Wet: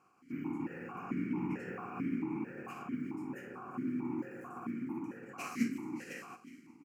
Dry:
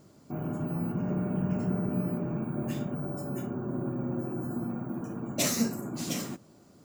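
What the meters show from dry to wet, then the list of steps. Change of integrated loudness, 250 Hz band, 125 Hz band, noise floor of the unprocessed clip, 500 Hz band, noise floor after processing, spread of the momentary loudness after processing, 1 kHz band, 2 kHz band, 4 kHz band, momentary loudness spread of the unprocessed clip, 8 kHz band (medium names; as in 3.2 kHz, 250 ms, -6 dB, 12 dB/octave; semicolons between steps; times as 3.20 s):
-7.5 dB, -5.5 dB, -14.5 dB, -57 dBFS, -10.5 dB, -62 dBFS, 9 LU, -2.5 dB, -2.0 dB, under -15 dB, 6 LU, under -20 dB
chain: spectral contrast reduction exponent 0.63; static phaser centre 1.5 kHz, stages 4; on a send: feedback delay 361 ms, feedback 57%, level -17 dB; on the sum: stepped vowel filter 4.5 Hz; trim +8.5 dB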